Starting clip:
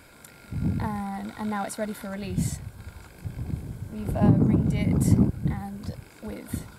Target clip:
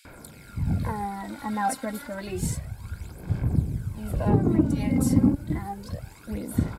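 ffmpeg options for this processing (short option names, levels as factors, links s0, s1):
-filter_complex "[0:a]atempo=1,aphaser=in_gain=1:out_gain=1:delay=3.8:decay=0.62:speed=0.3:type=sinusoidal,acrossover=split=2900[s0][s1];[s0]adelay=50[s2];[s2][s1]amix=inputs=2:normalize=0"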